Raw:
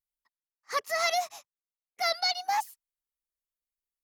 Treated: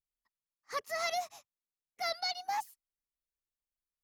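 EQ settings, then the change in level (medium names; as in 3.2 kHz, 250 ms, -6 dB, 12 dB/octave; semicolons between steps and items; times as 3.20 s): bass shelf 270 Hz +10.5 dB; -7.5 dB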